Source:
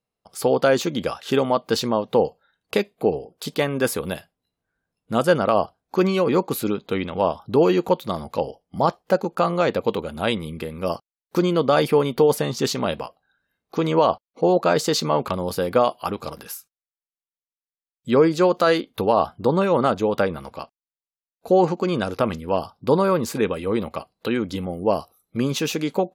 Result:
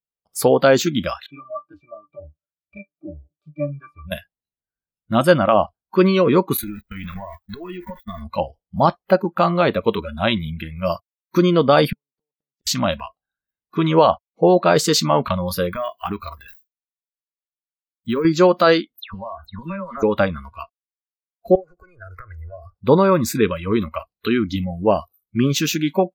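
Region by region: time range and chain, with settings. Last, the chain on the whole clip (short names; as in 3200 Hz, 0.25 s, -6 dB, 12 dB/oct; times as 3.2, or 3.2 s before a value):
1.26–4.12 HPF 50 Hz + octave resonator D, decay 0.13 s
6.57–8.22 zero-crossing step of -26.5 dBFS + gate -27 dBFS, range -40 dB + compressor 12:1, threshold -28 dBFS
11.9–12.67 flipped gate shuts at -16 dBFS, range -41 dB + air absorption 69 m + upward expander, over -57 dBFS
15.69–18.25 switching dead time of 0.053 ms + compressor 5:1, threshold -22 dBFS
18.96–20.03 compressor 8:1, threshold -27 dBFS + dispersion lows, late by 0.141 s, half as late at 2700 Hz
21.55–22.78 tilt shelf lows +4 dB, about 1400 Hz + compressor 20:1, threshold -27 dBFS + fixed phaser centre 890 Hz, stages 6
whole clip: high shelf 8100 Hz +6 dB; spectral noise reduction 24 dB; low shelf 89 Hz +8 dB; gain +4 dB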